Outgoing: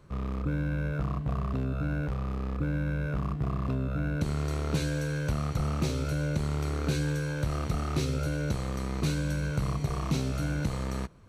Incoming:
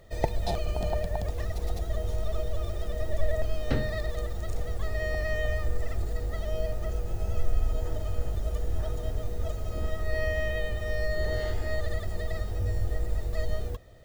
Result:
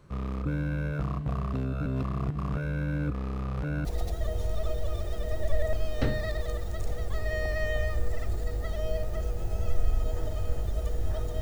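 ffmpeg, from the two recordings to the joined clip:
ffmpeg -i cue0.wav -i cue1.wav -filter_complex "[0:a]apad=whole_dur=11.41,atrim=end=11.41,asplit=2[link_01][link_02];[link_01]atrim=end=1.862[link_03];[link_02]atrim=start=1.858:end=3.852,asetpts=PTS-STARTPTS,areverse[link_04];[1:a]atrim=start=1.538:end=9.1[link_05];[link_03][link_04]acrossfade=duration=0.004:curve1=hsin:curve2=hsin[link_06];[link_06][link_05]acrossfade=duration=0.004:curve1=hsin:curve2=hsin" out.wav

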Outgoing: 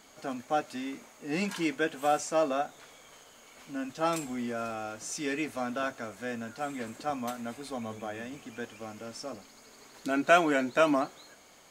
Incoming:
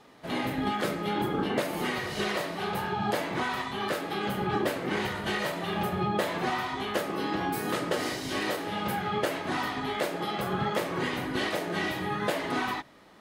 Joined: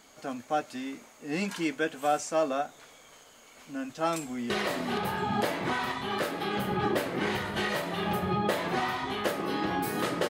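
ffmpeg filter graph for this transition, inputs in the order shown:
ffmpeg -i cue0.wav -i cue1.wav -filter_complex "[0:a]apad=whole_dur=10.29,atrim=end=10.29,atrim=end=4.502[link_01];[1:a]atrim=start=2.198:end=7.99[link_02];[link_01][link_02]acrossfade=duration=0.004:curve1=hsin:curve2=hsin,asplit=2[link_03][link_04];[link_04]afade=type=in:start_time=4.23:duration=0.01,afade=type=out:start_time=4.5:duration=0.01,aecho=0:1:470|940|1410|1880|2350|2820|3290|3760:0.794328|0.436881|0.240284|0.132156|0.072686|0.0399773|0.0219875|0.0120931[link_05];[link_03][link_05]amix=inputs=2:normalize=0" out.wav

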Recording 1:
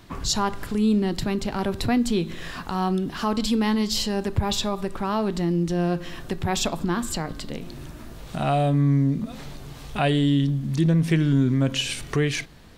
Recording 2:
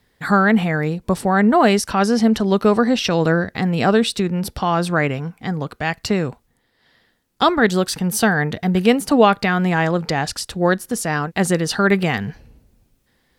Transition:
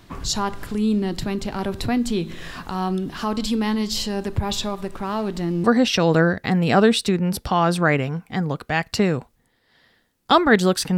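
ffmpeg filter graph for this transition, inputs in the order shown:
ffmpeg -i cue0.wav -i cue1.wav -filter_complex "[0:a]asettb=1/sr,asplit=3[link_01][link_02][link_03];[link_01]atrim=end=4.694[link_04];[link_02]atrim=start=4.69:end=5.64,asetpts=PTS-STARTPTS,afade=type=in:duration=0.004:curve=qsin,afade=type=out:start_time=0.946:duration=0.004:curve=qsin,aeval=exprs='sgn(val(0))*max(abs(val(0))-0.00596,0)':channel_layout=same[link_05];[link_03]atrim=start=5.636[link_06];[link_04][link_05]acrossfade=duration=0.004:curve1=hsin:curve2=qsin[link_07];[link_07][link_06]acrossfade=duration=0.004:curve1=qsin:curve2=hsin,apad=whole_dur=10.97,atrim=end=10.97,atrim=end=5.642[link_08];[1:a]atrim=start=2.748:end=8.08[link_09];[link_08][link_09]acrossfade=duration=0.004:curve1=hsin:curve2=hsin" out.wav

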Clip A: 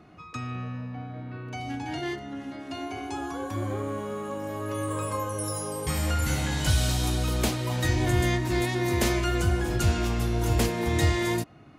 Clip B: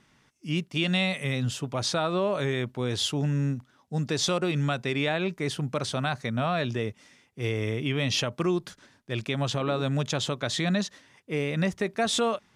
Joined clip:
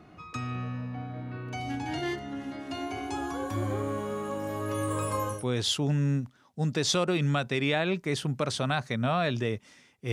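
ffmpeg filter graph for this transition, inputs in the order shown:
ffmpeg -i cue0.wav -i cue1.wav -filter_complex "[0:a]apad=whole_dur=10.12,atrim=end=10.12,atrim=end=5.45,asetpts=PTS-STARTPTS[link_01];[1:a]atrim=start=2.63:end=7.46,asetpts=PTS-STARTPTS[link_02];[link_01][link_02]acrossfade=duration=0.16:curve1=tri:curve2=tri" out.wav

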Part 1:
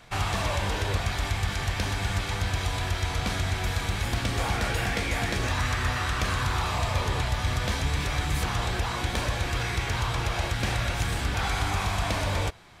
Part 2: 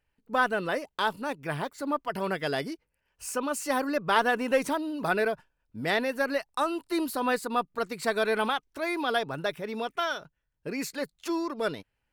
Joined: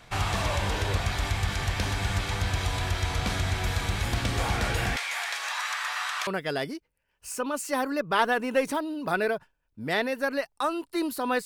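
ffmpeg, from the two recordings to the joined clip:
ffmpeg -i cue0.wav -i cue1.wav -filter_complex "[0:a]asettb=1/sr,asplit=3[link_01][link_02][link_03];[link_01]atrim=end=4.964[link_04];[link_02]atrim=start=4.96:end=6.27,asetpts=PTS-STARTPTS,afade=type=in:duration=0.004:curve=qsin,afade=type=out:start_time=1.306:duration=0.004:curve=qsin,highpass=frequency=840:width=0.5412,highpass=frequency=840:width=1.3066[link_05];[link_03]atrim=start=6.266[link_06];[link_04][link_05]acrossfade=duration=0.004:curve1=hsin:curve2=qsin[link_07];[link_07][link_06]acrossfade=duration=0.004:curve1=qsin:curve2=hsin,apad=whole_dur=11.45,atrim=end=11.45,atrim=end=6.272[link_08];[1:a]atrim=start=2.238:end=7.42[link_09];[link_08][link_09]acrossfade=duration=0.004:curve1=hsin:curve2=hsin" out.wav

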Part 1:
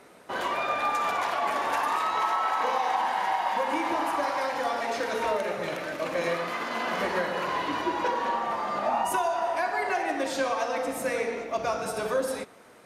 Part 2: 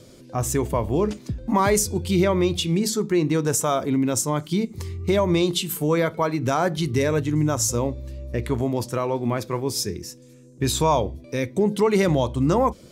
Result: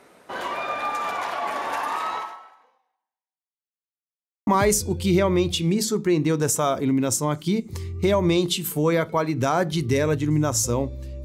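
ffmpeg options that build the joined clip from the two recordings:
ffmpeg -i cue0.wav -i cue1.wav -filter_complex "[0:a]apad=whole_dur=11.24,atrim=end=11.24,asplit=2[link_01][link_02];[link_01]atrim=end=3.66,asetpts=PTS-STARTPTS,afade=type=out:start_time=2.14:duration=1.52:curve=exp[link_03];[link_02]atrim=start=3.66:end=4.47,asetpts=PTS-STARTPTS,volume=0[link_04];[1:a]atrim=start=1.52:end=8.29,asetpts=PTS-STARTPTS,afade=type=in:duration=0.004:curve=hsin[link_05];[link_03][link_04][link_05]concat=n=3:v=0:a=1" out.wav

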